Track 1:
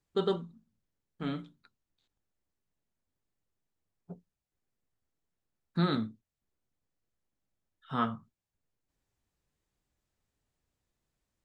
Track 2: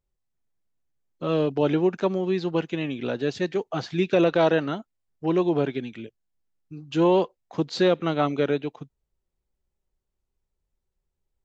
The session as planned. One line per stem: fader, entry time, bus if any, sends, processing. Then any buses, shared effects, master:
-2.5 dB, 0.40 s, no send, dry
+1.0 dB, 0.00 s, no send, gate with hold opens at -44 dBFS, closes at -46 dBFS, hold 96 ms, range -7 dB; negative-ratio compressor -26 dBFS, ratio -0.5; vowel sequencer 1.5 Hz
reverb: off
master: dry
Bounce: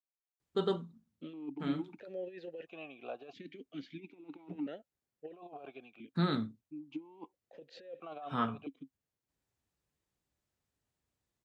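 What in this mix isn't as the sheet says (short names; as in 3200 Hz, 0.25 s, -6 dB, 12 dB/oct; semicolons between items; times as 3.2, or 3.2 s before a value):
stem 2 +1.0 dB -> -6.0 dB; master: extra HPF 56 Hz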